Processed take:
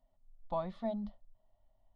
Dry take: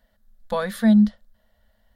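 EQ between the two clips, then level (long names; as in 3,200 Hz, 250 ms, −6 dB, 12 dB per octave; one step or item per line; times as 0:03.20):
head-to-tape spacing loss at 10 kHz 44 dB
phaser with its sweep stopped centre 320 Hz, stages 8
−3.0 dB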